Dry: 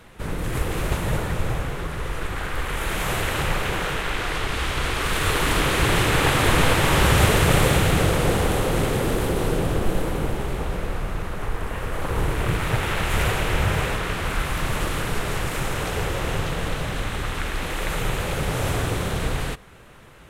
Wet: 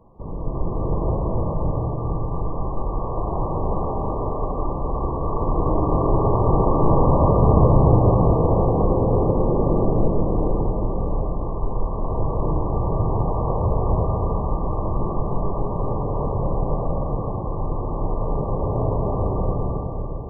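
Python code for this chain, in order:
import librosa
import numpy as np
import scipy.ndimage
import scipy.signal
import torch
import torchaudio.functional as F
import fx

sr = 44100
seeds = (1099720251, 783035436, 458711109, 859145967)

y = fx.brickwall_lowpass(x, sr, high_hz=1200.0)
y = fx.rev_freeverb(y, sr, rt60_s=3.8, hf_ratio=0.45, predelay_ms=120, drr_db=-4.5)
y = y * 10.0 ** (-3.0 / 20.0)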